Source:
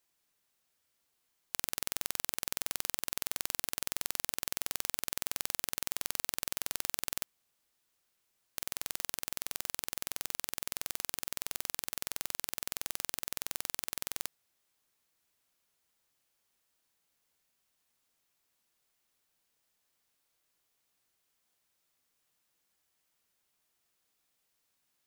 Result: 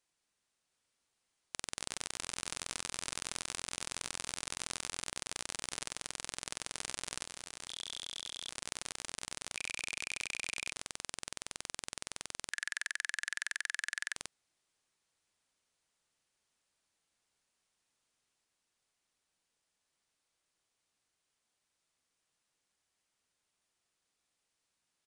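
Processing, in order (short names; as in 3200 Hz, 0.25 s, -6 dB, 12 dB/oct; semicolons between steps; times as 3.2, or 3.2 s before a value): 12.51–14.16 resonant high-pass 1700 Hz, resonance Q 13; echoes that change speed 0.713 s, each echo +6 st, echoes 2; downsampling 22050 Hz; gain -2.5 dB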